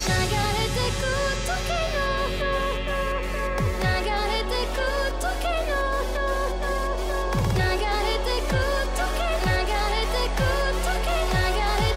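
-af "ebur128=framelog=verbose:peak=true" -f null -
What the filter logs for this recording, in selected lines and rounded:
Integrated loudness:
  I:         -24.9 LUFS
  Threshold: -34.9 LUFS
Loudness range:
  LRA:         1.4 LU
  Threshold: -45.1 LUFS
  LRA low:   -25.7 LUFS
  LRA high:  -24.3 LUFS
True peak:
  Peak:      -11.5 dBFS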